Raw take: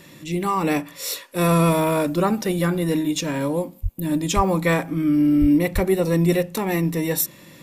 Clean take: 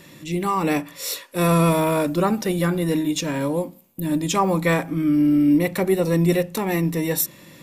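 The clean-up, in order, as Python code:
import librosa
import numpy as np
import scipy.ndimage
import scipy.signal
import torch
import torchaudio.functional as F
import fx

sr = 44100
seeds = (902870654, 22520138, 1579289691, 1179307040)

y = fx.fix_deplosive(x, sr, at_s=(3.82, 4.35, 5.4, 5.74))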